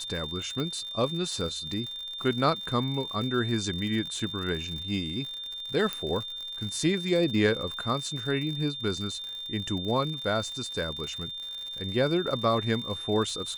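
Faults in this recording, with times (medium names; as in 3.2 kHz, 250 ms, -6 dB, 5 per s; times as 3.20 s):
crackle 97 per s -35 dBFS
whine 3.6 kHz -35 dBFS
0.60 s: pop -20 dBFS
5.93 s: pop -15 dBFS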